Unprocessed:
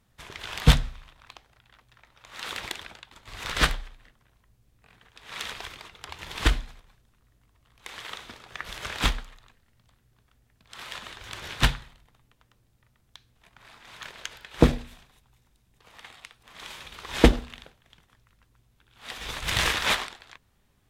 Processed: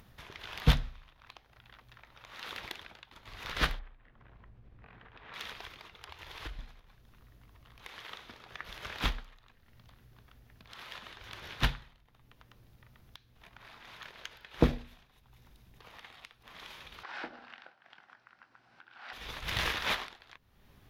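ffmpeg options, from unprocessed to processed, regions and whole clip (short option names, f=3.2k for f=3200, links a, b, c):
-filter_complex "[0:a]asettb=1/sr,asplit=3[a][b][c];[a]atrim=end=3.794[d];[b]atrim=start=3.79:end=5.34,asetpts=PTS-STARTPTS,afade=t=in:d=0.004:c=qsin,afade=t=out:st=1.546:d=0.004:c=qsin,lowpass=2.1k,acompressor=mode=upward:threshold=-49dB:ratio=2.5:attack=3.2:release=140:knee=2.83:detection=peak[e];[c]atrim=start=5.336[f];[d][e]acrossfade=d=0.004:c1=hsin:c2=qsin[g];[g][f]acrossfade=d=0.004:c1=qsin:c2=hsin,asettb=1/sr,asplit=3[h][i][j];[h]atrim=end=5.974[k];[i]atrim=start=5.97:end=6.59,asetpts=PTS-STARTPTS,afade=t=in:d=0.004:c=qsin,afade=t=out:st=0.616:d=0.004:c=qsin,equalizer=f=210:t=o:w=0.59:g=-14.5,acompressor=threshold=-35dB:ratio=3:attack=3.2:release=140:knee=1:detection=peak[l];[j]atrim=start=6.586[m];[k][l]acrossfade=d=0.004:c1=hsin:c2=qsin[n];[n][m]acrossfade=d=0.004:c1=qsin:c2=hsin,asettb=1/sr,asplit=3[o][p][q];[o]atrim=end=17.034[r];[p]atrim=start=17.03:end=19.13,asetpts=PTS-STARTPTS,afade=t=in:d=0.004:c=qsin,afade=t=out:st=2.096:d=0.004:c=qsin,acompressor=threshold=-33dB:ratio=3:attack=3.2:release=140:knee=1:detection=peak,highpass=340,equalizer=f=440:t=q:w=4:g=-8,equalizer=f=780:t=q:w=4:g=7,equalizer=f=1.5k:t=q:w=4:g=10,equalizer=f=3.5k:t=q:w=4:g=-7,equalizer=f=6.6k:t=q:w=4:g=-10,lowpass=f=6.9k:w=0.5412,lowpass=f=6.9k:w=1.3066,asplit=2[s][t];[t]adelay=23,volume=-12dB[u];[s][u]amix=inputs=2:normalize=0,atrim=end_sample=92610[v];[q]atrim=start=19.126[w];[r][v]acrossfade=d=0.004:c1=hsin:c2=qsin[x];[x][w]acrossfade=d=0.004:c1=qsin:c2=hsin,equalizer=f=8.1k:w=2.1:g=-13.5,acompressor=mode=upward:threshold=-38dB:ratio=2.5,volume=-7dB"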